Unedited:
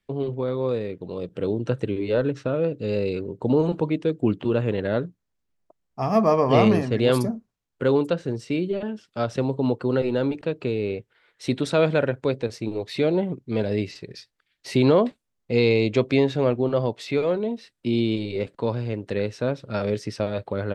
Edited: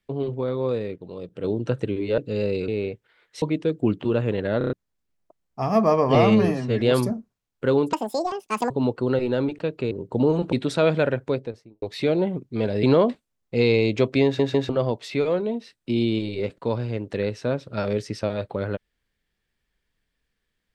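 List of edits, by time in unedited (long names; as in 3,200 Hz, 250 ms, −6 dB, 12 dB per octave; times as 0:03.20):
0:00.96–0:01.44: clip gain −4.5 dB
0:02.18–0:02.71: remove
0:03.21–0:03.82: swap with 0:10.74–0:11.48
0:04.98: stutter in place 0.03 s, 5 plays
0:06.55–0:06.99: time-stretch 1.5×
0:08.11–0:09.53: play speed 184%
0:12.15–0:12.78: fade out and dull
0:13.79–0:14.80: remove
0:16.21: stutter in place 0.15 s, 3 plays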